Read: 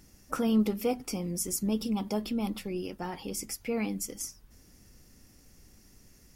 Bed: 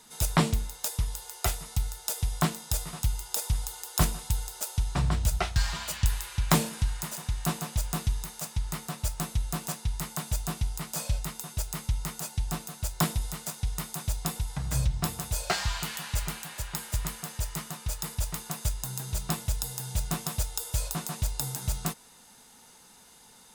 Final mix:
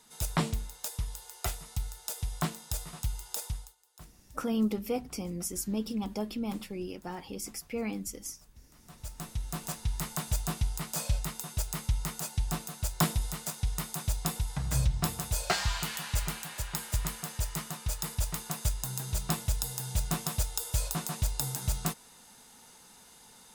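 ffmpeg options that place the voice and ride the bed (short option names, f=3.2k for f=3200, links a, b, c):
-filter_complex "[0:a]adelay=4050,volume=-3dB[a];[1:a]volume=21.5dB,afade=t=out:st=3.42:d=0.33:silence=0.0794328,afade=t=in:st=8.75:d=1.28:silence=0.0446684[b];[a][b]amix=inputs=2:normalize=0"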